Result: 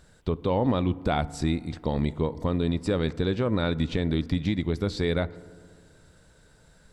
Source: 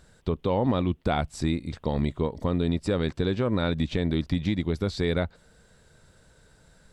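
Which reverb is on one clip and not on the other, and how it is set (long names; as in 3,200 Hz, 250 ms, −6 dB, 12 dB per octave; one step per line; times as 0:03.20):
feedback delay network reverb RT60 1.9 s, low-frequency decay 1.25×, high-frequency decay 0.3×, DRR 17.5 dB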